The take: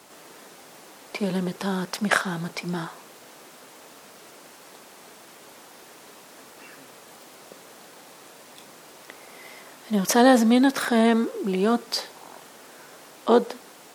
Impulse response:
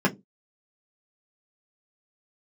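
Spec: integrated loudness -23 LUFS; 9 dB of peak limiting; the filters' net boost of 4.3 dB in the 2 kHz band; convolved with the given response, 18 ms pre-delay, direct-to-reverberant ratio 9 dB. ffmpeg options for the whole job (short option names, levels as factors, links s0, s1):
-filter_complex "[0:a]equalizer=f=2000:t=o:g=5.5,alimiter=limit=0.299:level=0:latency=1,asplit=2[s0][s1];[1:a]atrim=start_sample=2205,adelay=18[s2];[s1][s2]afir=irnorm=-1:irlink=0,volume=0.0668[s3];[s0][s3]amix=inputs=2:normalize=0,volume=0.944"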